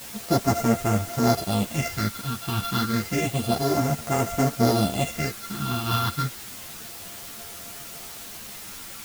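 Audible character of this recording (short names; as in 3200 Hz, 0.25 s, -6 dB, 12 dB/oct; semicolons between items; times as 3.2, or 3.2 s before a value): a buzz of ramps at a fixed pitch in blocks of 64 samples; phasing stages 6, 0.3 Hz, lowest notch 540–3900 Hz; a quantiser's noise floor 6-bit, dither triangular; a shimmering, thickened sound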